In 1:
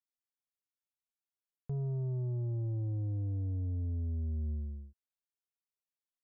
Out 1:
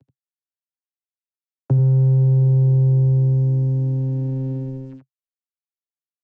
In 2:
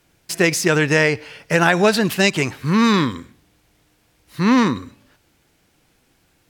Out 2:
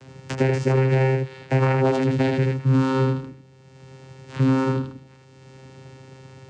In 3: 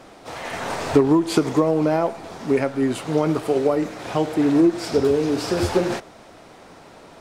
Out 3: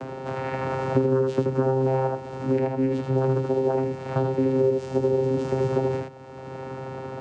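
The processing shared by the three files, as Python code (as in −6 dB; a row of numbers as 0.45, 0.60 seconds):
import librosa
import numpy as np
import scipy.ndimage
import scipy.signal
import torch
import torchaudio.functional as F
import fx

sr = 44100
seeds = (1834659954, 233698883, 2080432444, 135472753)

p1 = fx.cvsd(x, sr, bps=64000)
p2 = fx.vocoder(p1, sr, bands=8, carrier='saw', carrier_hz=132.0)
p3 = p2 + fx.echo_single(p2, sr, ms=78, db=-4.0, dry=0)
p4 = fx.band_squash(p3, sr, depth_pct=70)
y = p4 * 10.0 ** (-9 / 20.0) / np.max(np.abs(p4))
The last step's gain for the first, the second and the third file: +20.0, −1.5, −3.5 decibels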